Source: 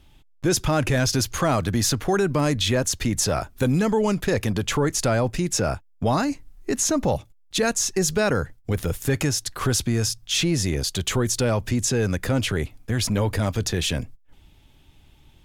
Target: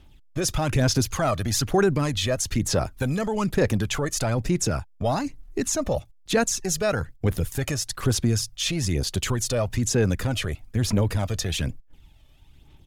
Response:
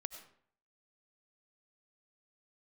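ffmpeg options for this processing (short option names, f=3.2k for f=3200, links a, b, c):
-af "atempo=1.2,aphaser=in_gain=1:out_gain=1:delay=1.7:decay=0.47:speed=1.1:type=sinusoidal,volume=-3.5dB"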